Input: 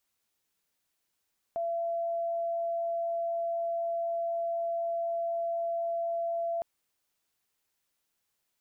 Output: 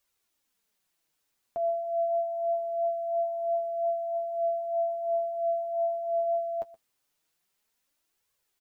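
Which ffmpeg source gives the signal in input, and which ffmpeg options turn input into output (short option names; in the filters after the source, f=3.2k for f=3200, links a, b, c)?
-f lavfi -i "sine=f=676:d=5.06:r=44100,volume=-10.44dB"
-af "acontrast=40,flanger=delay=1.7:depth=9:regen=34:speed=0.24:shape=triangular,aecho=1:1:123:0.112"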